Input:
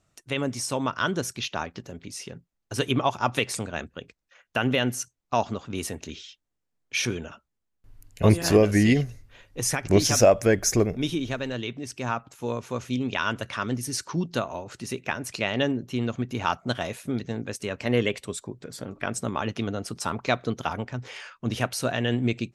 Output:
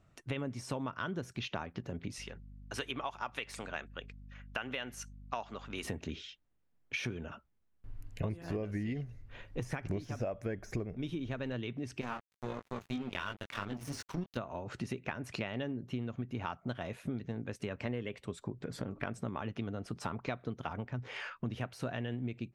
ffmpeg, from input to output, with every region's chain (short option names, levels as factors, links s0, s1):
-filter_complex "[0:a]asettb=1/sr,asplit=3[s0][s1][s2];[s0]atrim=end=2.184[s3];[s1]atrim=start=2.18:end=5.85,asetpts=PTS-STARTPTS,afade=t=in:d=0.004:c=qsin,afade=t=out:st=3.666:d=0.004:c=qsin,highpass=f=1300:p=1,aeval=exprs='val(0)+0.00178*(sin(2*PI*50*n/s)+sin(2*PI*2*50*n/s)/2+sin(2*PI*3*50*n/s)/3+sin(2*PI*4*50*n/s)/4+sin(2*PI*5*50*n/s)/5)':c=same[s4];[s2]atrim=start=5.846[s5];[s3][s4]acrossfade=d=0.004:c1=hsin:c2=qsin[s6];[s6][s5]acrossfade=d=0.004:c1=qsin:c2=hsin,asettb=1/sr,asplit=3[s7][s8][s9];[s7]atrim=end=12.014[s10];[s8]atrim=start=12.01:end=14.37,asetpts=PTS-STARTPTS,afade=t=in:d=0.004:c=qsin,afade=t=out:st=2.356:d=0.004:c=qsin,highshelf=f=3000:g=9.5,flanger=delay=19.5:depth=3.1:speed=3,aeval=exprs='sgn(val(0))*max(abs(val(0))-0.0158,0)':c=same[s11];[s9]atrim=start=14.366[s12];[s10][s11]acrossfade=d=0.004:c1=hsin:c2=qsin[s13];[s13][s12]acrossfade=d=0.004:c1=qsin:c2=hsin,deesser=0.55,bass=f=250:g=4,treble=f=4000:g=-13,acompressor=threshold=0.0158:ratio=8,volume=1.19"